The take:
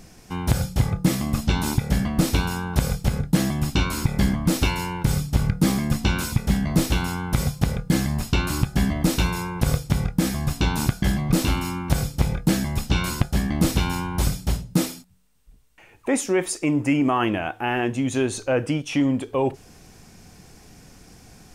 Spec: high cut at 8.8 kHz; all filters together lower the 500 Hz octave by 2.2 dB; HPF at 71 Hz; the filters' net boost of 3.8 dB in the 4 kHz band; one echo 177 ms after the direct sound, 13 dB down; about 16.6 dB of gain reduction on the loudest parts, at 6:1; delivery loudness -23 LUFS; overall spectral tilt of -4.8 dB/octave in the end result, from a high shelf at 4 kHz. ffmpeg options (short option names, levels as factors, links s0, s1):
-af "highpass=71,lowpass=8800,equalizer=f=500:t=o:g=-3,highshelf=f=4000:g=-6.5,equalizer=f=4000:t=o:g=9,acompressor=threshold=0.0158:ratio=6,aecho=1:1:177:0.224,volume=6.68"